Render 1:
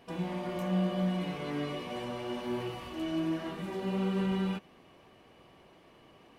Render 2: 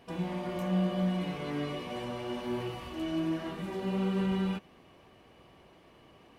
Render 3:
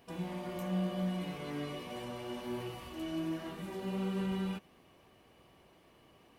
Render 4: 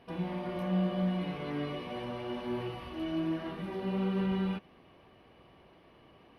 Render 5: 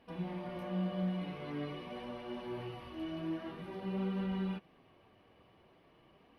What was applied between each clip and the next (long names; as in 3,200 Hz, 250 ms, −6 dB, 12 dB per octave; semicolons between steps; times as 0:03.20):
parametric band 62 Hz +4.5 dB 1.7 octaves
high-shelf EQ 8,200 Hz +11 dB; level −5 dB
moving average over 6 samples; level +4 dB
flanger 0.47 Hz, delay 3.4 ms, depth 7.5 ms, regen −44%; level −1.5 dB